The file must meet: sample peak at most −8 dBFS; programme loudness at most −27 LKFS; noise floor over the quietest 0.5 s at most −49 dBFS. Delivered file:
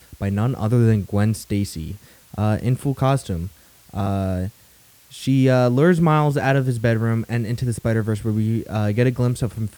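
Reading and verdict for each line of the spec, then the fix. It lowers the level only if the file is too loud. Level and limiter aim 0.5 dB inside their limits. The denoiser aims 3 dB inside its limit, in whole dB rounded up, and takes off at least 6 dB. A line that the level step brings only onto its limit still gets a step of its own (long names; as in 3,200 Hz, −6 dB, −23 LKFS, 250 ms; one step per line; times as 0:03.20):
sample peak −5.0 dBFS: out of spec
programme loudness −20.5 LKFS: out of spec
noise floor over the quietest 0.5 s −52 dBFS: in spec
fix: level −7 dB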